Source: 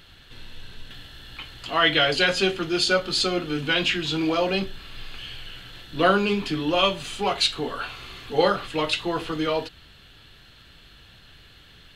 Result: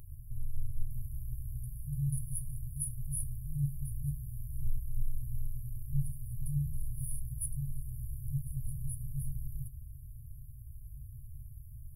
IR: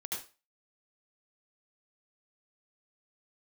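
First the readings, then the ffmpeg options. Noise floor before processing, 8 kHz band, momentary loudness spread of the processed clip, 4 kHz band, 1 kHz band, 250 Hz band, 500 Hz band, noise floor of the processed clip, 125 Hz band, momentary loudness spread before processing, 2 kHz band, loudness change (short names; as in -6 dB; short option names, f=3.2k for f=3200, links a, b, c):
-51 dBFS, -4.0 dB, 14 LU, under -40 dB, under -40 dB, under -15 dB, under -40 dB, -48 dBFS, +1.0 dB, 20 LU, under -40 dB, -16.5 dB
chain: -af "afftfilt=real='re*(1-between(b*sr/4096,150,9600))':imag='im*(1-between(b*sr/4096,150,9600))':win_size=4096:overlap=0.75,volume=8.5dB"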